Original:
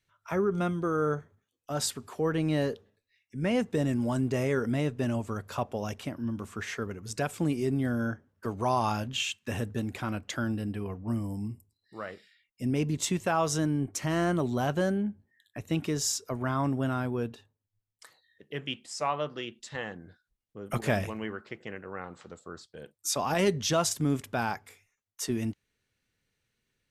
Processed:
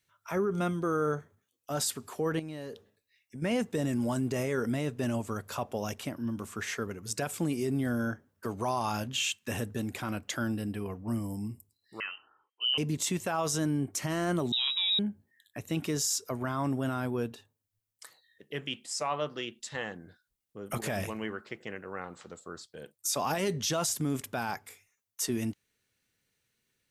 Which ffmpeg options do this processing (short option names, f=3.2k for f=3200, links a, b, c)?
-filter_complex "[0:a]asettb=1/sr,asplit=3[a][b][c];[a]atrim=end=2.394[d];[b]atrim=start=2.39:end=3.42,asetpts=PTS-STARTPTS,afade=t=in:d=0.004:c=qsin,afade=t=out:st=1.026:d=0.004:c=qsin,acompressor=threshold=-36dB:ratio=8:attack=3.2:release=140:knee=1:detection=peak[e];[c]atrim=start=3.416[f];[d][e]acrossfade=d=0.004:c1=hsin:c2=qsin[g];[g][f]acrossfade=d=0.004:c1=qsin:c2=hsin,asettb=1/sr,asplit=3[h][i][j];[h]atrim=end=12.004[k];[i]atrim=start=12:end=12.78,asetpts=PTS-STARTPTS,afade=t=in:d=0.004:c=qsin,afade=t=out:st=0.776:d=0.004:c=qsin,lowpass=f=2.7k:t=q:w=0.5098,lowpass=f=2.7k:t=q:w=0.6013,lowpass=f=2.7k:t=q:w=0.9,lowpass=f=2.7k:t=q:w=2.563,afreqshift=-3200[l];[j]atrim=start=12.776[m];[k][l]acrossfade=d=0.004:c1=hsin:c2=qsin[n];[n][m]acrossfade=d=0.004:c1=qsin:c2=hsin,asettb=1/sr,asplit=3[o][p][q];[o]atrim=end=14.524[r];[p]atrim=start=14.52:end=14.99,asetpts=PTS-STARTPTS,afade=t=in:d=0.004:c=qsin,afade=t=out:st=0.466:d=0.004:c=qsin,lowpass=f=3.4k:t=q:w=0.5098,lowpass=f=3.4k:t=q:w=0.6013,lowpass=f=3.4k:t=q:w=0.9,lowpass=f=3.4k:t=q:w=2.563,afreqshift=-4000[s];[q]atrim=start=14.986[t];[r][s]acrossfade=d=0.004:c1=hsin:c2=qsin[u];[u][t]acrossfade=d=0.004:c1=qsin:c2=hsin,highshelf=f=6.9k:g=9,alimiter=limit=-21dB:level=0:latency=1:release=12,lowshelf=f=65:g=-10"